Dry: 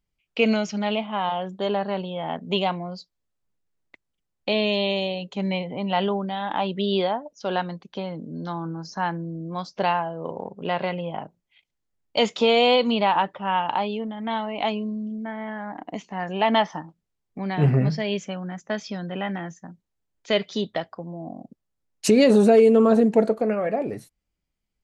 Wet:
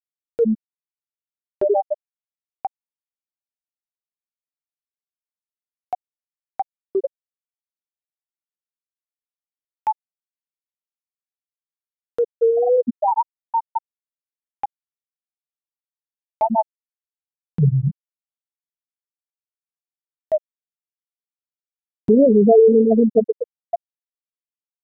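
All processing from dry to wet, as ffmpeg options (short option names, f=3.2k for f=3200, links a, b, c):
-filter_complex "[0:a]asettb=1/sr,asplit=3[a][b][c];[a]atrim=end=1.454[d];[b]atrim=start=1.45:end=1.94,asetpts=PTS-STARTPTS,afade=t=in:d=0.004:c=qsin,afade=t=out:st=0.486:d=0.004:c=qsin,highpass=f=230:w=0.5412,highpass=f=230:w=1.3066,acontrast=43[e];[c]atrim=start=1.936[f];[d][e]acrossfade=d=0.004:c1=hsin:c2=qsin[g];[g][f]acrossfade=d=0.004:c1=qsin:c2=hsin,equalizer=f=1.9k:w=0.83:g=3.5,afftfilt=real='re*gte(hypot(re,im),1)':imag='im*gte(hypot(re,im),1)':win_size=1024:overlap=0.75,acompressor=mode=upward:threshold=-19dB:ratio=2.5,volume=4dB"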